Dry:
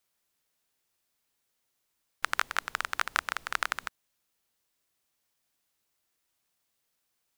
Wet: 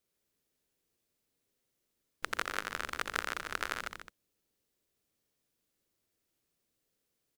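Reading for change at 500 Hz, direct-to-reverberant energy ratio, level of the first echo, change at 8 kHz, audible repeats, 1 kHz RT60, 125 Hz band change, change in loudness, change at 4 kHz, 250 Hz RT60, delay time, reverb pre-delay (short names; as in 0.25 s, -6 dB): +2.0 dB, none, -5.5 dB, -4.0 dB, 3, none, n/a, -5.0 dB, -4.0 dB, none, 84 ms, none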